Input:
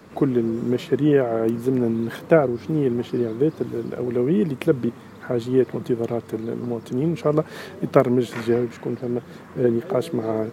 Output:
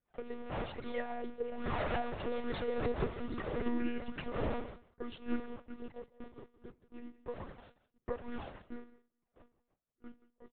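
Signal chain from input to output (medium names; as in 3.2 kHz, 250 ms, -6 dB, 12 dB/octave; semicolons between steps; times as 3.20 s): wind noise 470 Hz -23 dBFS; Doppler pass-by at 3.02 s, 56 m/s, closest 4.7 m; steep high-pass 190 Hz 72 dB/octave; gate -55 dBFS, range -35 dB; tilt shelf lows -5 dB; compression 12:1, threshold -43 dBFS, peak gain reduction 20.5 dB; flange 1.2 Hz, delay 0.5 ms, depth 2.8 ms, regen +1%; on a send at -15.5 dB: reverberation RT60 0.50 s, pre-delay 3 ms; on the sum: saturation -39 dBFS, distortion -24 dB; delay 173 ms -17.5 dB; monotone LPC vocoder at 8 kHz 240 Hz; trim +16.5 dB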